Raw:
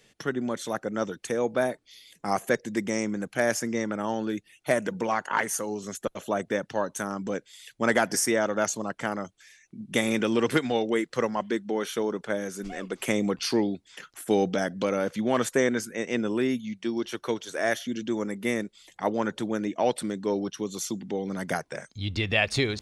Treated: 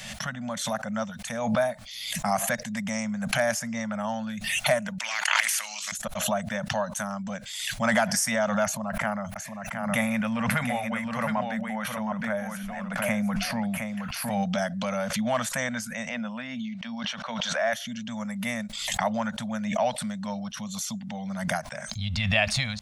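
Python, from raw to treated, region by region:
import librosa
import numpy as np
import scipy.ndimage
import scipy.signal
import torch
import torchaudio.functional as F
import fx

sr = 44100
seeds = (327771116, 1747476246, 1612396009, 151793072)

y = fx.chain(x, sr, fx.level_steps(step_db=12),
    fx.highpass_res(hz=2200.0, q=4.4),
    fx.spectral_comp(ratio=2.0), at=(4.98, 5.92))
y = fx.chain(y, sr, fx.band_shelf(hz=5100.0, db=-10.0, octaves=1.7),
    fx.echo_single(ms=716, db=-6.0),
    fx.sustainer(db_per_s=45.0), at=(8.64, 14.43))
y = fx.chain(y, sr, fx.highpass(hz=230.0, slope=12),
    fx.air_absorb(metres=160.0),
    fx.sustainer(db_per_s=45.0), at=(16.09, 17.73))
y = scipy.signal.sosfilt(scipy.signal.cheby1(3, 1.0, [220.0, 610.0], 'bandstop', fs=sr, output='sos'), y)
y = fx.peak_eq(y, sr, hz=400.0, db=4.0, octaves=1.3)
y = fx.pre_swell(y, sr, db_per_s=43.0)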